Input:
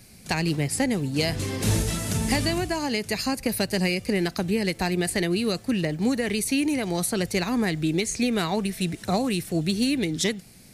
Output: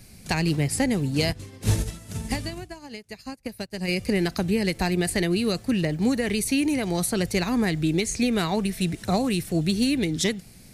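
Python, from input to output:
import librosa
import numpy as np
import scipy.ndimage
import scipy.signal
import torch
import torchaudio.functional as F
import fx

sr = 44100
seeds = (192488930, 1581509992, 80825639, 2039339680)

y = fx.low_shelf(x, sr, hz=100.0, db=7.5)
y = fx.upward_expand(y, sr, threshold_db=-36.0, expansion=2.5, at=(1.31, 3.87), fade=0.02)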